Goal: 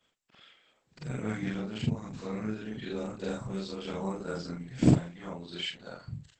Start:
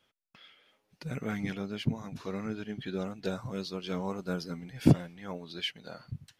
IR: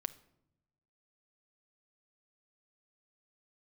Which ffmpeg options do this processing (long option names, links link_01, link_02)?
-af "afftfilt=real='re':imag='-im':win_size=4096:overlap=0.75,aexciter=amount=9.6:drive=8.6:freq=8700,volume=5.5dB" -ar 48000 -c:a libopus -b:a 12k